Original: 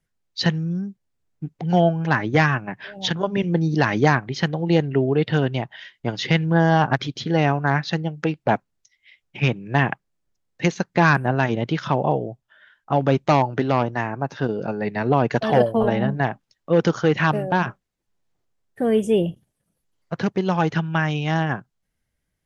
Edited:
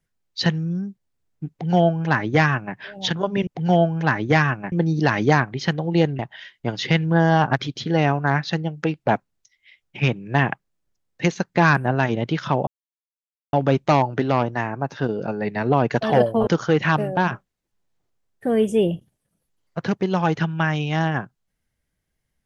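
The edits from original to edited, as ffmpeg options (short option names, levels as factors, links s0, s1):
-filter_complex "[0:a]asplit=7[s0][s1][s2][s3][s4][s5][s6];[s0]atrim=end=3.472[s7];[s1]atrim=start=1.508:end=2.762[s8];[s2]atrim=start=3.468:end=4.942[s9];[s3]atrim=start=5.588:end=12.07,asetpts=PTS-STARTPTS,afade=t=out:st=6.478:d=0.004:c=hsin[s10];[s4]atrim=start=12.07:end=12.93,asetpts=PTS-STARTPTS,volume=0[s11];[s5]atrim=start=12.93:end=15.872,asetpts=PTS-STARTPTS,afade=t=in:d=0.004:c=hsin[s12];[s6]atrim=start=16.818[s13];[s7][s8]acrossfade=d=0.004:c1=hsin:c2=hsin[s14];[s14][s9]acrossfade=d=0.004:c1=hsin:c2=hsin[s15];[s10][s11][s12]concat=n=3:v=0:a=1[s16];[s15][s16]acrossfade=d=0.004:c1=hsin:c2=hsin[s17];[s17][s13]acrossfade=d=0.004:c1=hsin:c2=hsin"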